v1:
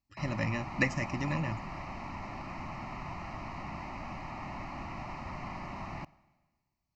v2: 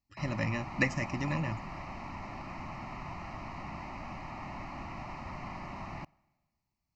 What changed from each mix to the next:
background: send −6.5 dB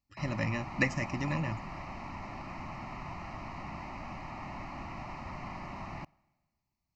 nothing changed

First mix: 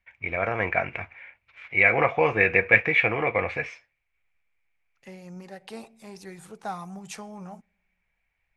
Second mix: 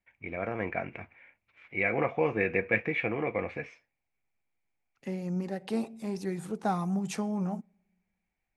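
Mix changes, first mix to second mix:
first voice −11.5 dB
master: add parametric band 250 Hz +12 dB 2 octaves

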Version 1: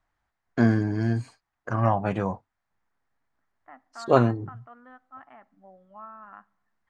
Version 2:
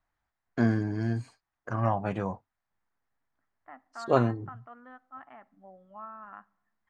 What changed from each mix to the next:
first voice −4.5 dB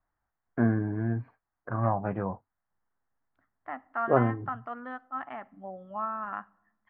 first voice: add low-pass filter 1,800 Hz 24 dB per octave
second voice +10.5 dB

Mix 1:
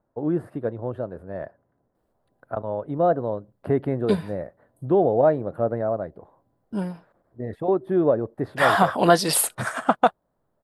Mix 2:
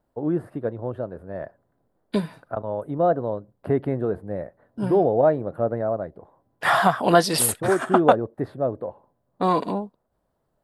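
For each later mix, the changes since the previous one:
second voice: entry −1.95 s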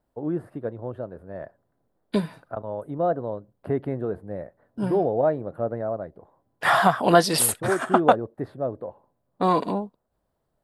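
first voice −3.5 dB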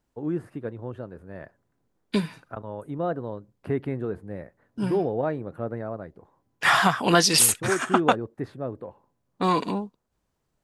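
master: add graphic EQ with 15 bands 630 Hz −8 dB, 2,500 Hz +7 dB, 6,300 Hz +11 dB

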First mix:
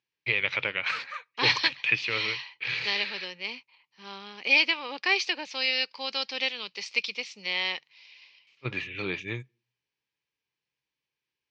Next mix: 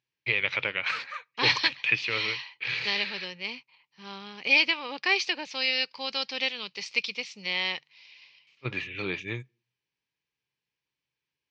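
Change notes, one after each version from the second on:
second voice: remove high-pass filter 230 Hz 12 dB per octave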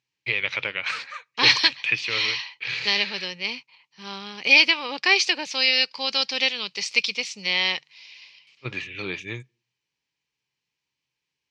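second voice +4.5 dB
master: remove high-frequency loss of the air 110 metres

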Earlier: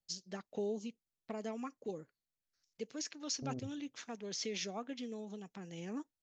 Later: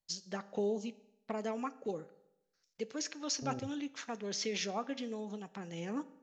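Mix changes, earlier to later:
first voice: send on
master: add parametric band 1,100 Hz +5 dB 2.2 octaves

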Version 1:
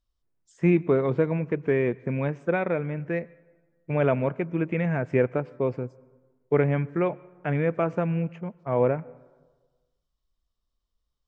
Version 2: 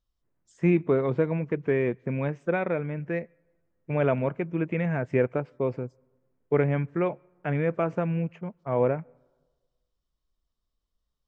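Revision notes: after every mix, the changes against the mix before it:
first voice: send −11.0 dB
second voice +8.0 dB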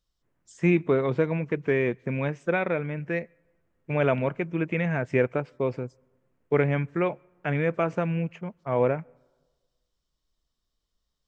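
second voice +5.0 dB
master: add high-shelf EQ 2,200 Hz +10 dB

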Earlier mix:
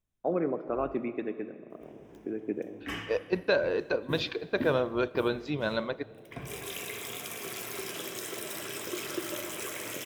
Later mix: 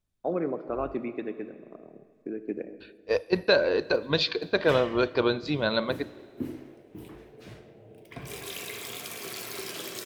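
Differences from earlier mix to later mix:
second voice +4.0 dB
background: entry +1.80 s
master: add parametric band 4,400 Hz +10 dB 0.29 octaves

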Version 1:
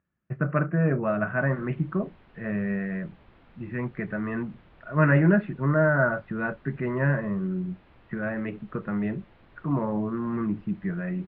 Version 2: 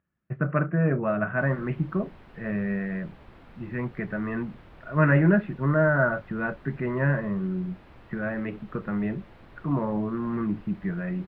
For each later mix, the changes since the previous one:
background: remove transistor ladder low-pass 4,800 Hz, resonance 25%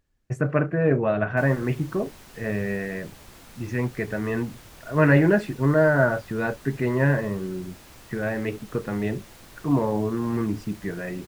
speech: remove loudspeaker in its box 120–3,500 Hz, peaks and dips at 120 Hz −4 dB, 180 Hz +8 dB, 270 Hz −6 dB, 450 Hz −8 dB, 800 Hz −5 dB, 1,300 Hz +6 dB
master: remove high-frequency loss of the air 470 metres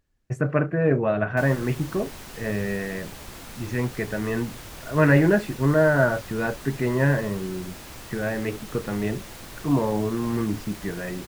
background +7.0 dB

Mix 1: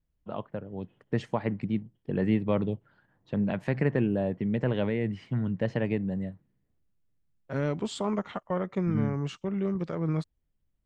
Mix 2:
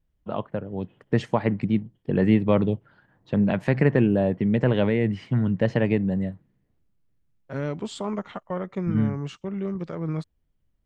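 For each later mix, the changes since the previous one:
first voice +6.5 dB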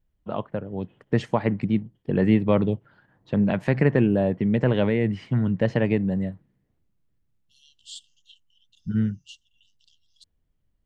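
second voice: add linear-phase brick-wall high-pass 2,700 Hz

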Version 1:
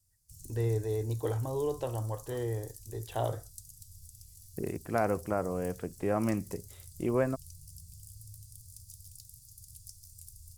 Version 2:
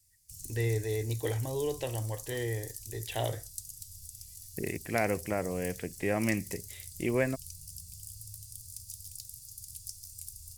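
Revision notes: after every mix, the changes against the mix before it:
master: add high shelf with overshoot 1,600 Hz +7 dB, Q 3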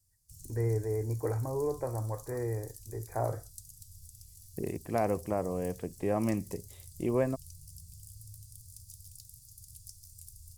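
first voice: add linear-phase brick-wall low-pass 2,500 Hz
second voice: add parametric band 1,400 Hz −11.5 dB 0.31 octaves
master: add high shelf with overshoot 1,600 Hz −7 dB, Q 3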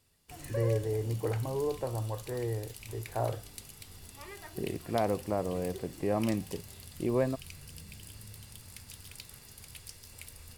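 background: remove Chebyshev band-stop filter 120–5,900 Hz, order 3

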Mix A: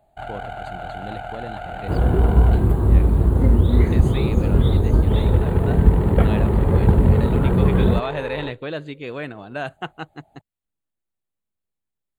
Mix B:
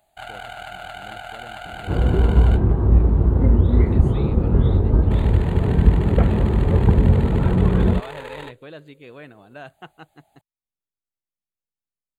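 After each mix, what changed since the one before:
speech −10.5 dB
first sound: add tilt shelving filter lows −9.5 dB, about 1,300 Hz
second sound: add high-frequency loss of the air 350 metres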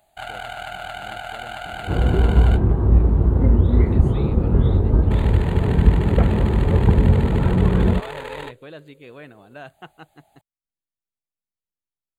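first sound +3.0 dB

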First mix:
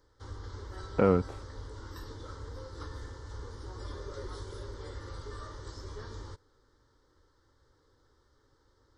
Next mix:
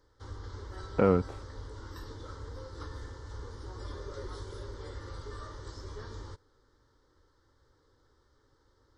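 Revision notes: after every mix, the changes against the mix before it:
master: add high-shelf EQ 9,300 Hz −4 dB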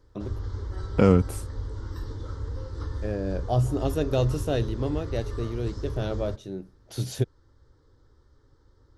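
first voice: unmuted
second voice: remove low-pass filter 1,600 Hz 12 dB per octave
master: add low-shelf EQ 310 Hz +11.5 dB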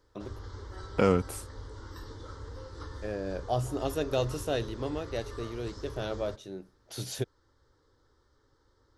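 master: add low-shelf EQ 310 Hz −11.5 dB

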